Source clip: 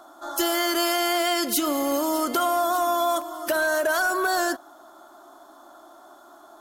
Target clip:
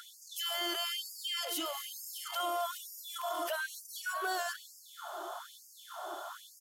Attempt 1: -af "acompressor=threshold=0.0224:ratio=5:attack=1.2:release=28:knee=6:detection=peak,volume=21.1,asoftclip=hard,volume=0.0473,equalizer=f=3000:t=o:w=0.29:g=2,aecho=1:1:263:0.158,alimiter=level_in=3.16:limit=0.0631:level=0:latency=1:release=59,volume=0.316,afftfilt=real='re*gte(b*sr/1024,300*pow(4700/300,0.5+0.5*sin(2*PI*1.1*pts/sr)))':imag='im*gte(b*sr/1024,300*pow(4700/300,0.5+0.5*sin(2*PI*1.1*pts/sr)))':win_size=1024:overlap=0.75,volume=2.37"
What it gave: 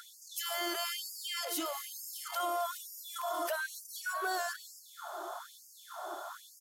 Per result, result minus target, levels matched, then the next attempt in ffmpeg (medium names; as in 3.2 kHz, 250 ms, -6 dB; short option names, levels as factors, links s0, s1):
compression: peak gain reduction -5 dB; 4 kHz band -3.0 dB
-af "acompressor=threshold=0.0106:ratio=5:attack=1.2:release=28:knee=6:detection=peak,volume=21.1,asoftclip=hard,volume=0.0473,equalizer=f=3000:t=o:w=0.29:g=2,aecho=1:1:263:0.158,alimiter=level_in=3.16:limit=0.0631:level=0:latency=1:release=59,volume=0.316,afftfilt=real='re*gte(b*sr/1024,300*pow(4700/300,0.5+0.5*sin(2*PI*1.1*pts/sr)))':imag='im*gte(b*sr/1024,300*pow(4700/300,0.5+0.5*sin(2*PI*1.1*pts/sr)))':win_size=1024:overlap=0.75,volume=2.37"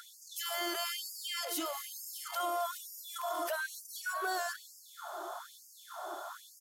4 kHz band -3.0 dB
-af "acompressor=threshold=0.0106:ratio=5:attack=1.2:release=28:knee=6:detection=peak,volume=21.1,asoftclip=hard,volume=0.0473,equalizer=f=3000:t=o:w=0.29:g=10.5,aecho=1:1:263:0.158,alimiter=level_in=3.16:limit=0.0631:level=0:latency=1:release=59,volume=0.316,afftfilt=real='re*gte(b*sr/1024,300*pow(4700/300,0.5+0.5*sin(2*PI*1.1*pts/sr)))':imag='im*gte(b*sr/1024,300*pow(4700/300,0.5+0.5*sin(2*PI*1.1*pts/sr)))':win_size=1024:overlap=0.75,volume=2.37"